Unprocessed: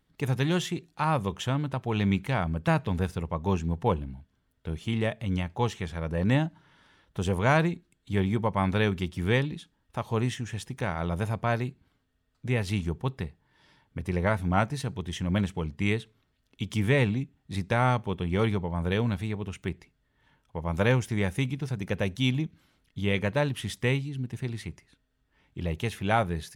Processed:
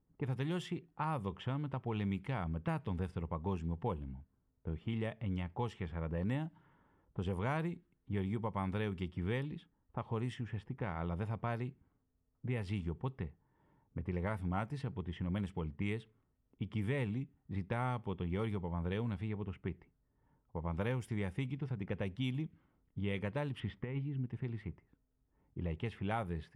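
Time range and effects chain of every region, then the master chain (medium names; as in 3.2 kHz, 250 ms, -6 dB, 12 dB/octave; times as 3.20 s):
23.60–24.26 s: low-pass 2.8 kHz + compressor with a negative ratio -28 dBFS, ratio -0.5
whole clip: level-controlled noise filter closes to 830 Hz, open at -20.5 dBFS; graphic EQ with 31 bands 630 Hz -4 dB, 1.6 kHz -4 dB, 2.5 kHz -3 dB, 4 kHz -9 dB, 6.3 kHz -12 dB; compression 2.5:1, threshold -31 dBFS; trim -4.5 dB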